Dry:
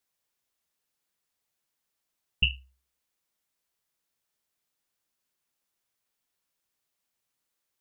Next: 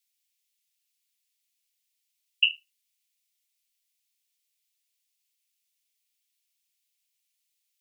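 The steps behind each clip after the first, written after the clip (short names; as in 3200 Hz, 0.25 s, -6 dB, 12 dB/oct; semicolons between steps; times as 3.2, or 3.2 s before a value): steep high-pass 2200 Hz; gain +4 dB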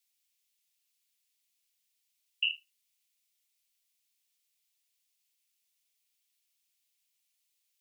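limiter -19 dBFS, peak gain reduction 11.5 dB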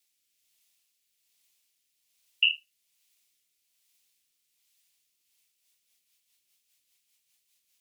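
rotary speaker horn 1.2 Hz, later 5 Hz, at 5.01; gain +9 dB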